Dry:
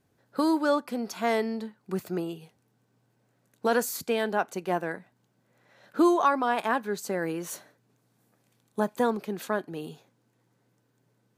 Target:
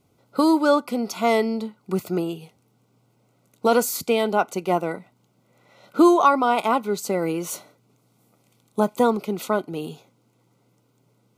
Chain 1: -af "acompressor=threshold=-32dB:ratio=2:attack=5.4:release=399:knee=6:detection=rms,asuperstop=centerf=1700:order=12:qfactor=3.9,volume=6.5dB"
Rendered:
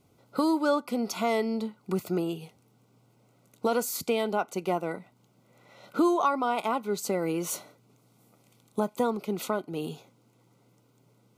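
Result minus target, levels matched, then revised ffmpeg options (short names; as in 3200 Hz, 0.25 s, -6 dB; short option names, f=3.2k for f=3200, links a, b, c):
compressor: peak gain reduction +9.5 dB
-af "asuperstop=centerf=1700:order=12:qfactor=3.9,volume=6.5dB"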